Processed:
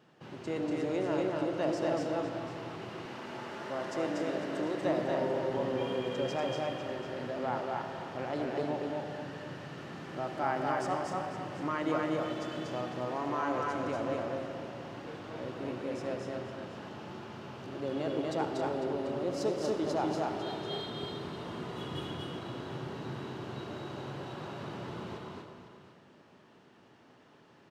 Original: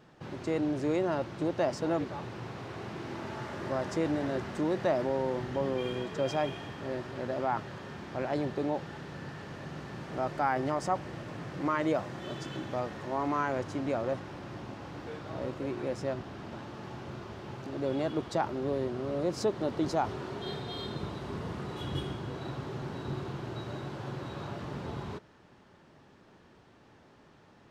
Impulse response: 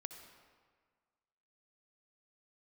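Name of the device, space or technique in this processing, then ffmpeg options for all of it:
stadium PA: -filter_complex "[0:a]highpass=130,equalizer=f=2.9k:t=o:w=0.22:g=5,aecho=1:1:239.1|271.1:0.794|0.355[a];[1:a]atrim=start_sample=2205[b];[a][b]afir=irnorm=-1:irlink=0,asettb=1/sr,asplit=3[c][d][e];[c]atrim=end=3.054[f];[d]atrim=start=3.05:end=4.82,asetpts=PTS-STARTPTS,afade=t=in:d=0.004:c=qsin,afade=t=out:st=1.766:d=0.004:c=qsin,highpass=f=220:p=1[g];[e]atrim=start=4.816[h];[f][g]acrossfade=d=0.004:c1=hsin:c2=qsin[i];[i][h]acrossfade=d=0.004:c1=qsin:c2=hsin,aecho=1:1:500:0.237"

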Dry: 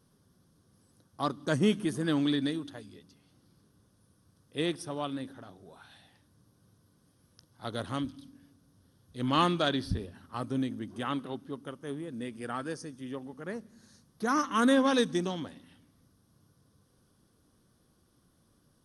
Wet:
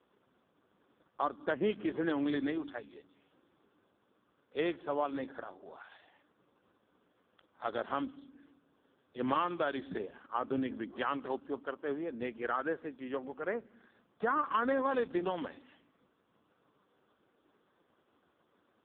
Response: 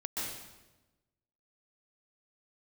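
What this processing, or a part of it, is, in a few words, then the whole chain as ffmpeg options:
voicemail: -af "highpass=420,lowpass=2.7k,acompressor=threshold=-35dB:ratio=6,volume=7.5dB" -ar 8000 -c:a libopencore_amrnb -b:a 4750

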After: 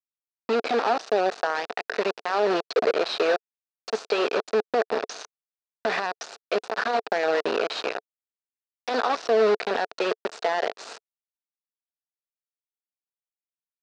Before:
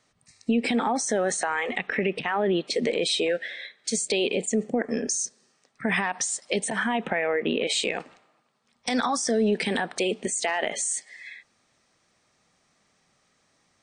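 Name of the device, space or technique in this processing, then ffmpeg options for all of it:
hand-held game console: -af "acrusher=bits=3:mix=0:aa=0.000001,highpass=410,equalizer=f=440:t=q:w=4:g=7,equalizer=f=690:t=q:w=4:g=7,equalizer=f=1.4k:t=q:w=4:g=3,equalizer=f=2.1k:t=q:w=4:g=-7,equalizer=f=3.2k:t=q:w=4:g=-8,lowpass=f=4.3k:w=0.5412,lowpass=f=4.3k:w=1.3066"

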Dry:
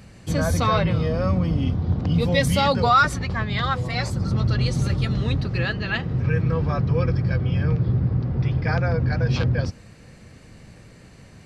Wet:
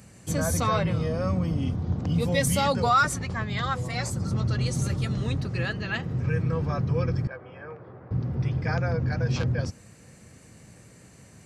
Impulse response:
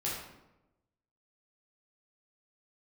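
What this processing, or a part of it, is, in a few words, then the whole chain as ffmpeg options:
budget condenser microphone: -filter_complex "[0:a]highpass=72,highshelf=f=5.6k:t=q:w=1.5:g=7.5,asettb=1/sr,asplit=3[a][b][c];[a]atrim=end=7.274[d];[b]atrim=start=7.27:end=8.11,asetpts=PTS-STARTPTS,afade=t=in:d=0.004:c=qsin,afade=t=out:st=0.836:d=0.004:c=qsin,acrossover=split=430 2100:gain=0.0631 1 0.0631[e][f][g];[e][f][g]amix=inputs=3:normalize=0[h];[c]atrim=start=8.106[i];[d][h]acrossfade=d=0.004:c1=hsin:c2=qsin[j];[j][i]acrossfade=d=0.004:c1=qsin:c2=hsin,volume=-4dB"

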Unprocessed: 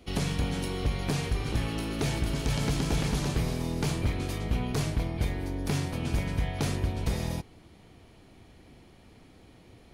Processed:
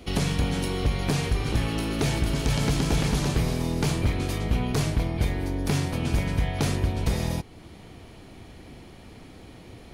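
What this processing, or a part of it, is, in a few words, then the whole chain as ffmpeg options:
parallel compression: -filter_complex "[0:a]asplit=2[a][b];[b]acompressor=threshold=-43dB:ratio=6,volume=-1dB[c];[a][c]amix=inputs=2:normalize=0,volume=3dB"

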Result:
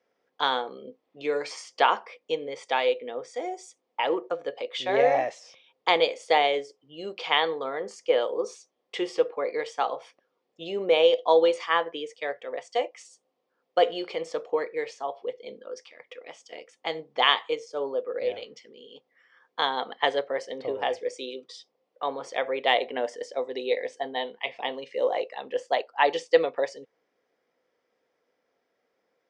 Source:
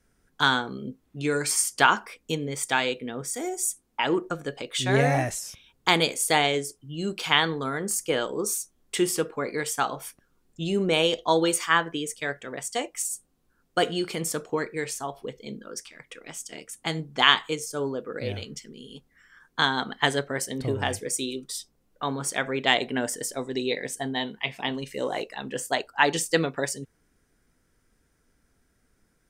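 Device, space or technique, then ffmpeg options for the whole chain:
phone earpiece: -af "highpass=500,equalizer=f=510:t=q:w=4:g=10,equalizer=f=730:t=q:w=4:g=3,equalizer=f=1.5k:t=q:w=4:g=-10,equalizer=f=2.7k:t=q:w=4:g=-3,equalizer=f=4k:t=q:w=4:g=-5,lowpass=f=4.4k:w=0.5412,lowpass=f=4.4k:w=1.3066"

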